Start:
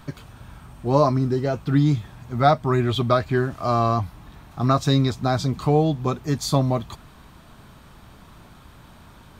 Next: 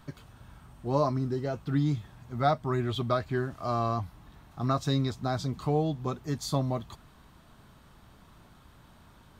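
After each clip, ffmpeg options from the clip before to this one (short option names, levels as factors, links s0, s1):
-af "bandreject=f=2400:w=22,volume=0.376"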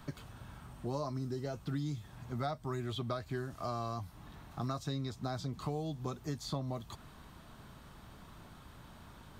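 -filter_complex "[0:a]acrossover=split=86|4500[s0][s1][s2];[s0]acompressor=threshold=0.00158:ratio=4[s3];[s1]acompressor=threshold=0.0112:ratio=4[s4];[s2]acompressor=threshold=0.00158:ratio=4[s5];[s3][s4][s5]amix=inputs=3:normalize=0,volume=1.26"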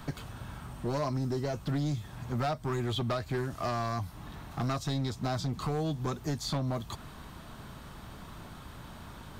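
-af "volume=50.1,asoftclip=hard,volume=0.02,volume=2.37"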